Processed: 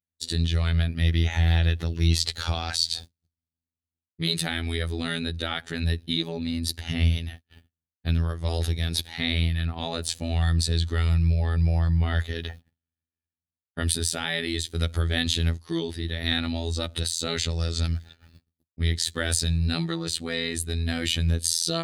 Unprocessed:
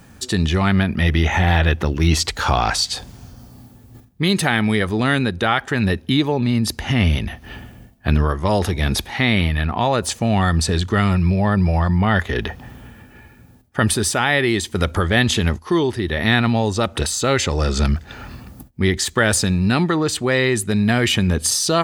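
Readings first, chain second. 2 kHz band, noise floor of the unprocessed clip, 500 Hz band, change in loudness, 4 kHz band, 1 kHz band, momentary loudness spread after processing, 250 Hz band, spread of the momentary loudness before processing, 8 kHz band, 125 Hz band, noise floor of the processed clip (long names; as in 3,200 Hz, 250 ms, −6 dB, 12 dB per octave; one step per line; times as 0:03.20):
−11.5 dB, −47 dBFS, −13.0 dB, −7.5 dB, −4.0 dB, −16.0 dB, 6 LU, −11.5 dB, 5 LU, −6.5 dB, −5.5 dB, below −85 dBFS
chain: noise gate −32 dBFS, range −43 dB
graphic EQ with 15 bands 100 Hz +10 dB, 1,000 Hz −8 dB, 4,000 Hz +10 dB, 10,000 Hz +7 dB
phases set to zero 83 Hz
level −9.5 dB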